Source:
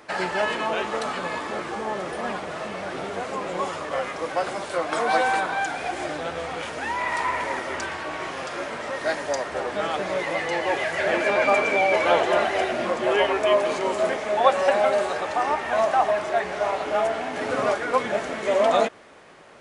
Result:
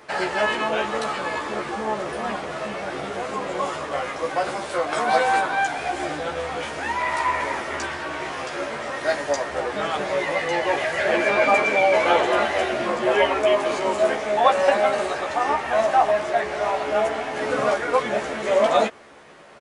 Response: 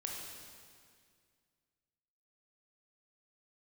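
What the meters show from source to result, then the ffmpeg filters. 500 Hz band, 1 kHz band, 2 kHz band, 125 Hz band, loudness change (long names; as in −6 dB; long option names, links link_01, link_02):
+1.5 dB, +2.0 dB, +2.0 dB, +1.5 dB, +1.5 dB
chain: -filter_complex "[0:a]asplit=2[link_01][link_02];[link_02]adelay=14,volume=-3dB[link_03];[link_01][link_03]amix=inputs=2:normalize=0"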